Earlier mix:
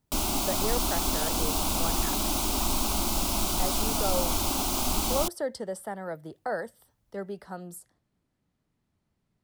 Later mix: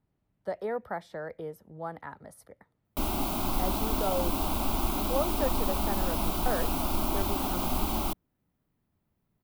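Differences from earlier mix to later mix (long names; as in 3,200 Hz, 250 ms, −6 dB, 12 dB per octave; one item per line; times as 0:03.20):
background: entry +2.85 s
master: add parametric band 6,700 Hz −13.5 dB 1.7 octaves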